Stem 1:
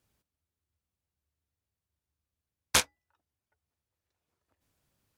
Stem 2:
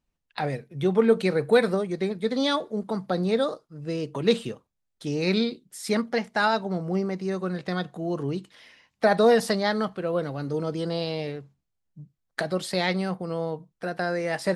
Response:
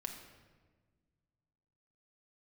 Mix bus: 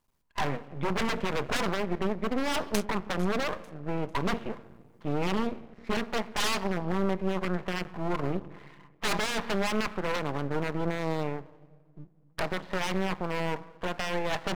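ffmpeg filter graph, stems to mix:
-filter_complex "[0:a]acompressor=threshold=-26dB:ratio=6,volume=0dB,asplit=2[a][b];[b]volume=-15dB[c];[1:a]lowpass=f=2.2k:w=0.5412,lowpass=f=2.2k:w=1.3066,equalizer=f=1k:w=3.8:g=14.5,aeval=exprs='0.0944*(abs(mod(val(0)/0.0944+3,4)-2)-1)':c=same,volume=0dB,asplit=2[d][e];[e]volume=-6.5dB[f];[2:a]atrim=start_sample=2205[g];[f][g]afir=irnorm=-1:irlink=0[h];[c]aecho=0:1:447|894|1341|1788:1|0.27|0.0729|0.0197[i];[a][d][h][i]amix=inputs=4:normalize=0,aeval=exprs='max(val(0),0)':c=same"

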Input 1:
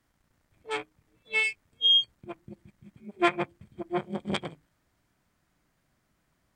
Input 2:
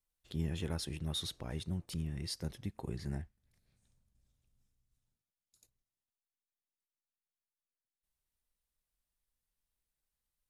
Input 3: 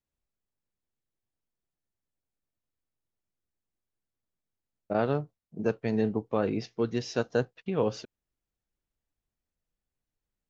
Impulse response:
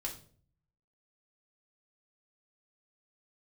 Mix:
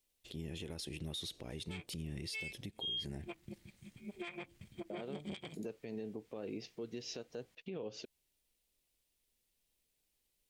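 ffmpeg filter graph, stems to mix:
-filter_complex "[0:a]acompressor=threshold=-29dB:ratio=2,adelay=1000,volume=-3.5dB,afade=t=in:st=2.76:d=0.59:silence=0.334965[a];[1:a]volume=0dB[b];[2:a]volume=-9dB[c];[b][c]amix=inputs=2:normalize=0,equalizer=f=400:w=0.61:g=9.5,acompressor=threshold=-36dB:ratio=4,volume=0dB[d];[a][d]amix=inputs=2:normalize=0,highshelf=f=1.9k:t=q:w=1.5:g=8,alimiter=level_in=10dB:limit=-24dB:level=0:latency=1:release=122,volume=-10dB"

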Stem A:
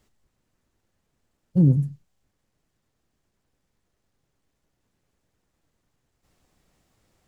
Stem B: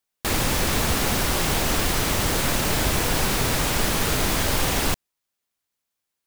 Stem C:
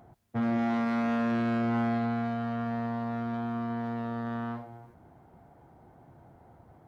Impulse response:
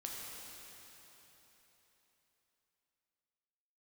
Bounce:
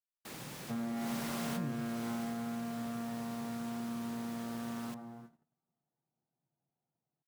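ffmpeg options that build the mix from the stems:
-filter_complex "[0:a]equalizer=f=110:w=0.76:g=-14,volume=-10.5dB,asplit=2[a][b];[1:a]highpass=60,volume=-12dB,afade=t=in:st=0.96:d=0.2:silence=0.266073,afade=t=out:st=2.03:d=0.34:silence=0.281838,asplit=2[c][d];[d]volume=-19.5dB[e];[2:a]adelay=350,volume=-6dB,asplit=2[f][g];[g]volume=-11.5dB[h];[b]apad=whole_len=276134[i];[c][i]sidechaincompress=threshold=-45dB:ratio=8:attack=16:release=619[j];[3:a]atrim=start_sample=2205[k];[e][h]amix=inputs=2:normalize=0[l];[l][k]afir=irnorm=-1:irlink=0[m];[a][j][f][m]amix=inputs=4:normalize=0,agate=range=-32dB:threshold=-53dB:ratio=16:detection=peak,lowshelf=f=110:t=q:w=3:g=-8.5,acompressor=threshold=-40dB:ratio=2"

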